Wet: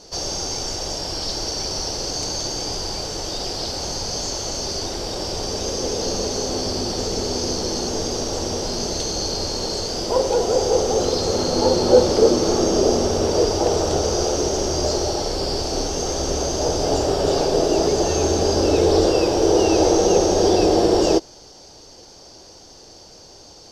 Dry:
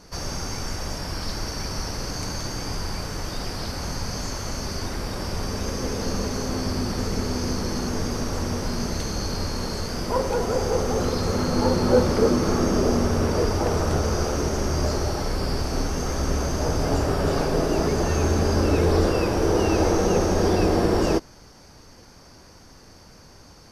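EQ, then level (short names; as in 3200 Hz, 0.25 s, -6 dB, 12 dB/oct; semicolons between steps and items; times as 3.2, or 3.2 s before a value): band shelf 520 Hz +9.5 dB; band shelf 4800 Hz +12 dB; -3.5 dB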